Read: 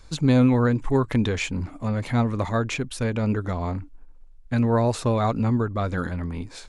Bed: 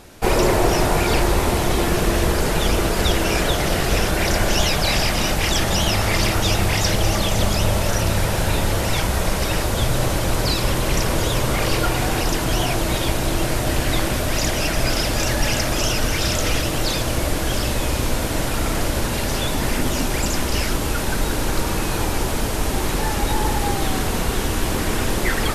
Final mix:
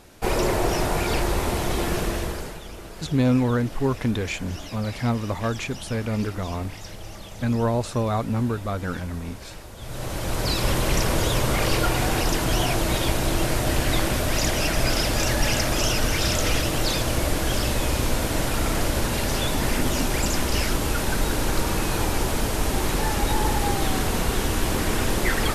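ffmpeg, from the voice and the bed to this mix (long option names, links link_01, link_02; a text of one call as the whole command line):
ffmpeg -i stem1.wav -i stem2.wav -filter_complex "[0:a]adelay=2900,volume=-2dB[link_01];[1:a]volume=12.5dB,afade=type=out:start_time=1.96:duration=0.65:silence=0.188365,afade=type=in:start_time=9.79:duration=0.92:silence=0.125893[link_02];[link_01][link_02]amix=inputs=2:normalize=0" out.wav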